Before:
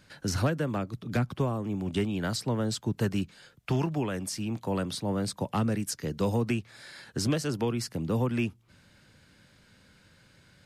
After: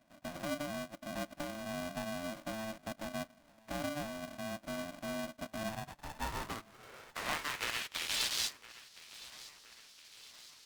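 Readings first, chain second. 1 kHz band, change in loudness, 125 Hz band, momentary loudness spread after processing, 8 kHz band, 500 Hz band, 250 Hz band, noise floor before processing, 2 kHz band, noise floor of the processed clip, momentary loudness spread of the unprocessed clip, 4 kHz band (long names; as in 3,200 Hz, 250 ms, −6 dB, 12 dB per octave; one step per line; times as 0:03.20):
−5.0 dB, −9.0 dB, −20.0 dB, 17 LU, −4.0 dB, −10.0 dB, −13.5 dB, −61 dBFS, −1.0 dB, −64 dBFS, 5 LU, 0.0 dB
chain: spectral envelope flattened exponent 0.1
in parallel at −1 dB: downward compressor, threshold −37 dBFS, peak gain reduction 15 dB
on the sum: asymmetric clip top −27 dBFS
band-pass filter sweep 210 Hz → 4,500 Hz, 0:05.44–0:08.47
on a send: feedback echo with a high-pass in the loop 1,015 ms, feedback 53%, high-pass 490 Hz, level −17.5 dB
on the sum: ring modulator with a square carrier 440 Hz
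level +2.5 dB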